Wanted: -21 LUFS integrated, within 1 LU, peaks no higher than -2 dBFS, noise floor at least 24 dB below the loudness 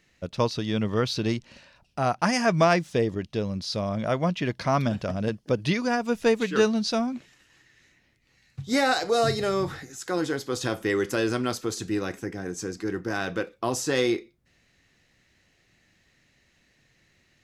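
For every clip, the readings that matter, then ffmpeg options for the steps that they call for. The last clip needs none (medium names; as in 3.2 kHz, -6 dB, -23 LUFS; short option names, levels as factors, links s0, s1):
loudness -26.5 LUFS; peak level -8.5 dBFS; loudness target -21.0 LUFS
-> -af "volume=1.88"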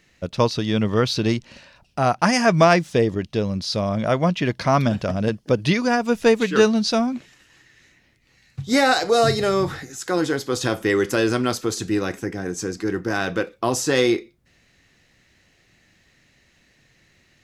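loudness -21.0 LUFS; peak level -3.0 dBFS; noise floor -61 dBFS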